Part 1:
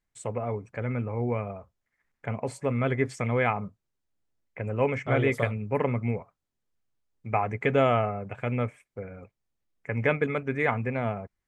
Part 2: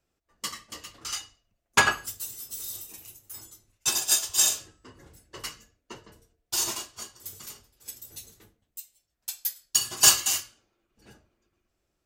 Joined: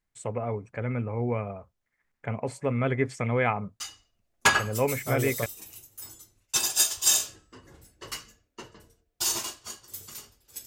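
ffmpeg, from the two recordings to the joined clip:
-filter_complex "[0:a]apad=whole_dur=10.66,atrim=end=10.66,atrim=end=5.46,asetpts=PTS-STARTPTS[a];[1:a]atrim=start=1.12:end=7.98,asetpts=PTS-STARTPTS[b];[a][b]acrossfade=d=1.66:c1=log:c2=log"

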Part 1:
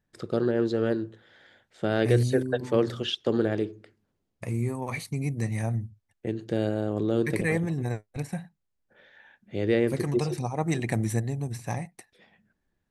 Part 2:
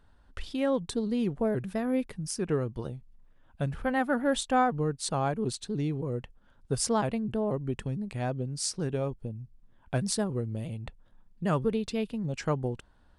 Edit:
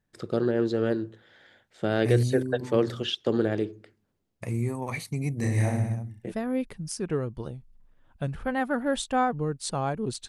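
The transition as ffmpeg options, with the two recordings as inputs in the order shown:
-filter_complex "[0:a]asettb=1/sr,asplit=3[a][b][c];[a]atrim=end=5.374[d];[b]atrim=start=5.37:end=6.33,asetpts=PTS-STARTPTS,afade=t=in:d=0.004:c=qsin,afade=t=out:st=0.956:d=0.004:c=qsin,aecho=1:1:30|64.5|104.2|149.8|202.3|262.6|332:0.794|0.631|0.501|0.398|0.316|0.251|0.2,atrim=end_sample=42336[e];[c]atrim=start=6.326[f];[d][e]acrossfade=d=0.004:c1=hsin:c2=qsin[g];[g][f]acrossfade=d=0.004:c1=qsin:c2=hsin,apad=whole_dur=10.28,atrim=end=10.28,atrim=end=6.33,asetpts=PTS-STARTPTS[h];[1:a]atrim=start=1.62:end=5.67,asetpts=PTS-STARTPTS[i];[h][i]acrossfade=d=0.1:c1=tri:c2=tri"

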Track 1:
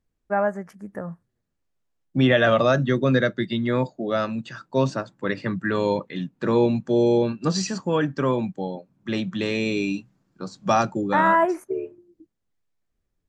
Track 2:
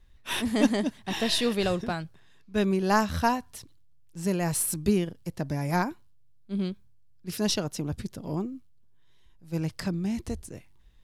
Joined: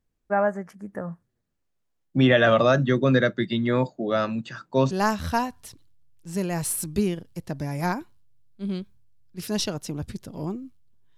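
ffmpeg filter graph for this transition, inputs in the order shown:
-filter_complex "[0:a]apad=whole_dur=11.17,atrim=end=11.17,atrim=end=4.912[a];[1:a]atrim=start=2.808:end=9.07[b];[a][b]acrossfade=d=0.004:c1=hsin:c2=hsin"

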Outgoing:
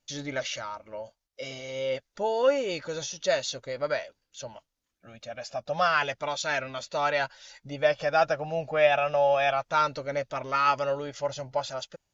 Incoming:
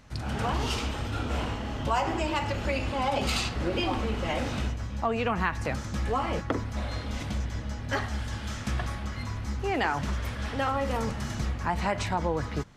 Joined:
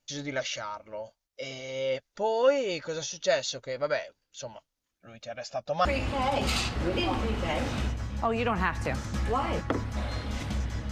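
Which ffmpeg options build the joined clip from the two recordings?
-filter_complex "[0:a]apad=whole_dur=10.91,atrim=end=10.91,atrim=end=5.852[a];[1:a]atrim=start=2.648:end=7.71[b];[a][b]acrossfade=d=0.004:c1=hsin:c2=hsin"

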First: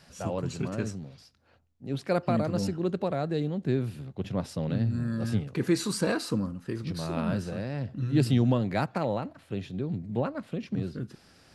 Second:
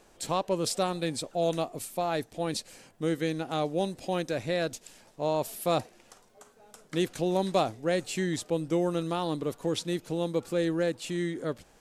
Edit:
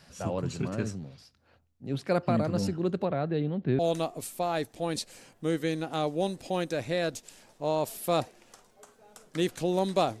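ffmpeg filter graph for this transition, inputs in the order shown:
-filter_complex "[0:a]asettb=1/sr,asplit=3[a][b][c];[a]atrim=end=3.054[d];[b]atrim=start=3.05:end=3.79,asetpts=PTS-STARTPTS,afade=t=in:d=0.004:c=qsin,afade=t=out:st=0.736:d=0.004:c=qsin,lowpass=f=3.7k:w=0.5412,lowpass=f=3.7k:w=1.3066[e];[c]atrim=start=3.786[f];[d][e]acrossfade=d=0.004:c1=hsin:c2=qsin[g];[g][f]acrossfade=d=0.004:c1=qsin:c2=hsin,apad=whole_dur=10.2,atrim=end=10.2,atrim=end=3.792[h];[1:a]atrim=start=1.368:end=7.78[i];[h][i]acrossfade=d=0.004:c1=hsin:c2=hsin"

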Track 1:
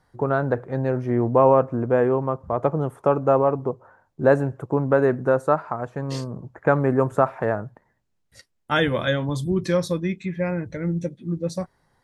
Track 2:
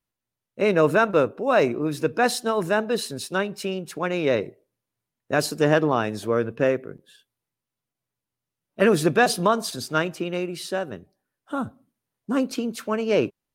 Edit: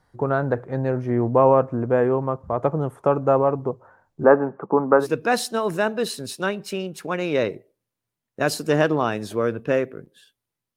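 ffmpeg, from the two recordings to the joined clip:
-filter_complex "[0:a]asplit=3[a][b][c];[a]afade=t=out:st=4.23:d=0.02[d];[b]highpass=f=190:w=0.5412,highpass=f=190:w=1.3066,equalizer=f=200:t=q:w=4:g=9,equalizer=f=420:t=q:w=4:g=4,equalizer=f=850:t=q:w=4:g=7,equalizer=f=1.2k:t=q:w=4:g=10,lowpass=f=2.1k:w=0.5412,lowpass=f=2.1k:w=1.3066,afade=t=in:st=4.23:d=0.02,afade=t=out:st=5.07:d=0.02[e];[c]afade=t=in:st=5.07:d=0.02[f];[d][e][f]amix=inputs=3:normalize=0,apad=whole_dur=10.76,atrim=end=10.76,atrim=end=5.07,asetpts=PTS-STARTPTS[g];[1:a]atrim=start=1.89:end=7.68,asetpts=PTS-STARTPTS[h];[g][h]acrossfade=d=0.1:c1=tri:c2=tri"

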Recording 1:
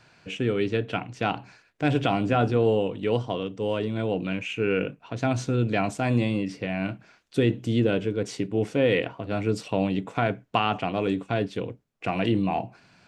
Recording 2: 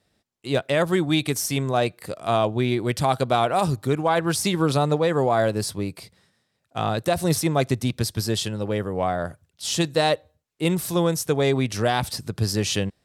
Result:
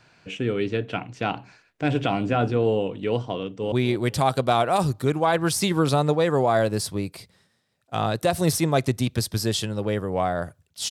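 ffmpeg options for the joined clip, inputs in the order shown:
-filter_complex "[0:a]apad=whole_dur=10.9,atrim=end=10.9,atrim=end=3.722[a];[1:a]atrim=start=2.548:end=9.73[b];[a][b]acrossfade=d=0.004:c1=hsin:c2=hsin,asplit=2[c][d];[d]afade=t=in:st=3.35:d=0.01,afade=t=out:st=3.72:d=0.01,aecho=0:1:240|480|720|960:0.188365|0.0847642|0.0381439|0.0171648[e];[c][e]amix=inputs=2:normalize=0"

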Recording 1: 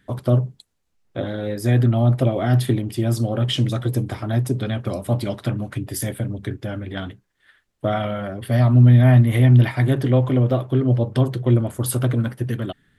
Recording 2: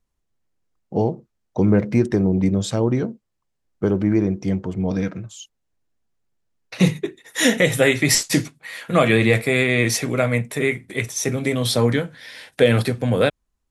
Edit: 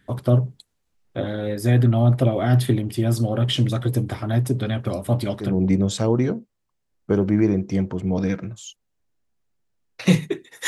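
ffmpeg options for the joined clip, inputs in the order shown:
-filter_complex "[0:a]apad=whole_dur=10.67,atrim=end=10.67,atrim=end=5.62,asetpts=PTS-STARTPTS[a];[1:a]atrim=start=2.09:end=7.4,asetpts=PTS-STARTPTS[b];[a][b]acrossfade=d=0.26:c1=tri:c2=tri"

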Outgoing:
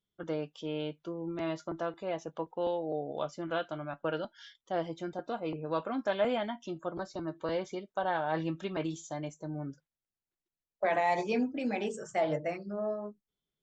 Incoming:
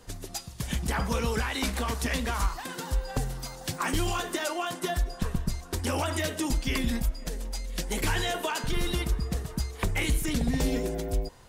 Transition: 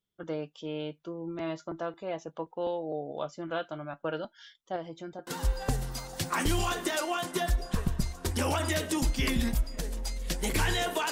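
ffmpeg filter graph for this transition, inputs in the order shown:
-filter_complex "[0:a]asettb=1/sr,asplit=3[a][b][c];[a]atrim=end=4.764[d];[b]atrim=start=4.76:end=5.27,asetpts=PTS-STARTPTS,afade=t=in:d=0.004:c=qsin,afade=t=out:st=0.506:d=0.004:c=qsin,acompressor=threshold=-41dB:ratio=1.5:attack=3.2:release=140:knee=1:detection=peak[e];[c]atrim=start=5.266[f];[d][e]acrossfade=d=0.004:c1=hsin:c2=qsin[g];[g][f]acrossfade=d=0.004:c1=qsin:c2=hsin,apad=whole_dur=11.11,atrim=end=11.11,atrim=end=5.272[h];[1:a]atrim=start=2.748:end=8.59[i];[h][i]acrossfade=d=0.004:c1=hsin:c2=hsin"

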